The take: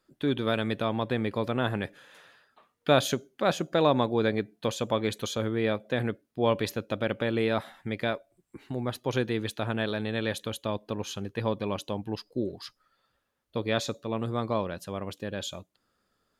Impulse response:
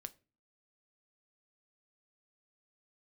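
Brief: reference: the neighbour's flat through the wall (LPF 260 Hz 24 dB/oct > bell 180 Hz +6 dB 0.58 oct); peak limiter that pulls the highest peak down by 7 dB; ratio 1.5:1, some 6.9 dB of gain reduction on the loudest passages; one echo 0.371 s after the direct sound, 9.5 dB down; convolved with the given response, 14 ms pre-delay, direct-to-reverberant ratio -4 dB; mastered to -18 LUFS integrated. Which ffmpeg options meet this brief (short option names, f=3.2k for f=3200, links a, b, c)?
-filter_complex "[0:a]acompressor=threshold=-36dB:ratio=1.5,alimiter=limit=-23.5dB:level=0:latency=1,aecho=1:1:371:0.335,asplit=2[a][b];[1:a]atrim=start_sample=2205,adelay=14[c];[b][c]afir=irnorm=-1:irlink=0,volume=9dB[d];[a][d]amix=inputs=2:normalize=0,lowpass=f=260:w=0.5412,lowpass=f=260:w=1.3066,equalizer=f=180:t=o:w=0.58:g=6,volume=16dB"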